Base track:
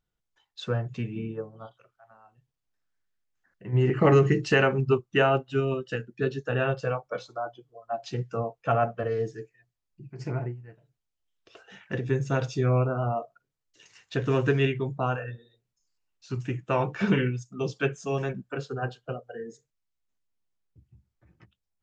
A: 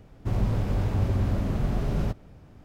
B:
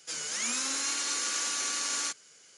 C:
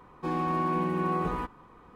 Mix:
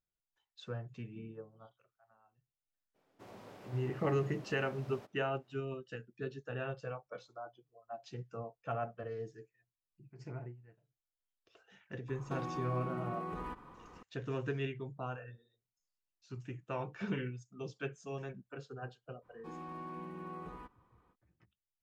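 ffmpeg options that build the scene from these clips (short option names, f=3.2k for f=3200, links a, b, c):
-filter_complex "[3:a]asplit=2[a][b];[0:a]volume=-13.5dB[c];[1:a]highpass=390[d];[a]acompressor=threshold=-36dB:ratio=6:attack=3.2:release=140:knee=1:detection=peak[e];[d]atrim=end=2.64,asetpts=PTS-STARTPTS,volume=-15dB,afade=t=in:d=0.02,afade=t=out:st=2.62:d=0.02,adelay=2940[f];[e]atrim=end=1.95,asetpts=PTS-STARTPTS,volume=-1.5dB,afade=t=in:d=0.004:c=hsin,afade=t=out:st=1.946:d=0.004:c=hsin,adelay=12080[g];[b]atrim=end=1.95,asetpts=PTS-STARTPTS,volume=-17dB,afade=t=in:d=0.05,afade=t=out:st=1.9:d=0.05,adelay=19210[h];[c][f][g][h]amix=inputs=4:normalize=0"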